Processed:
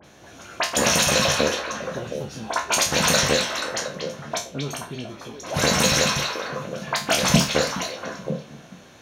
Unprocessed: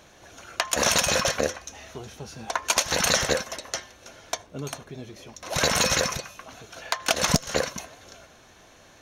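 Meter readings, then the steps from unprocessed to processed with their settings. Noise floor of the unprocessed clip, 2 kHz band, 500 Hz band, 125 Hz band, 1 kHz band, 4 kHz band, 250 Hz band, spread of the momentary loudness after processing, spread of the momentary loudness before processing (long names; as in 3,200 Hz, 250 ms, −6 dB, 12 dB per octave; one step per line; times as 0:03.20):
−53 dBFS, +3.5 dB, +4.5 dB, +6.5 dB, +4.0 dB, +4.0 dB, +7.5 dB, 14 LU, 20 LU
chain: peak hold with a decay on every bin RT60 0.31 s
high-pass filter 55 Hz
parametric band 200 Hz +6 dB 1.7 octaves
in parallel at −4.5 dB: sine wavefolder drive 6 dB, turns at −1 dBFS
on the sum: all-pass dispersion highs, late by 43 ms, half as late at 2,900 Hz
on a send: echo through a band-pass that steps 239 ms, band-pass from 3,100 Hz, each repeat −1.4 octaves, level −1 dB
on the sum: level −8.5 dB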